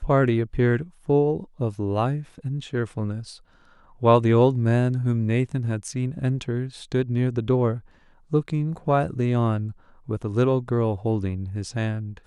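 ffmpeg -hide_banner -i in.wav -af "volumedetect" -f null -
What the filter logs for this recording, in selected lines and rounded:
mean_volume: -23.4 dB
max_volume: -4.7 dB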